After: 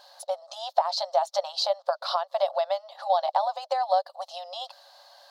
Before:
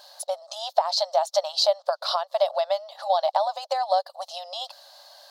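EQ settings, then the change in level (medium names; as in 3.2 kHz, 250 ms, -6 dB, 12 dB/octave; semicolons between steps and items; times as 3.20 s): treble shelf 3.9 kHz -9 dB; band-stop 620 Hz, Q 12; 0.0 dB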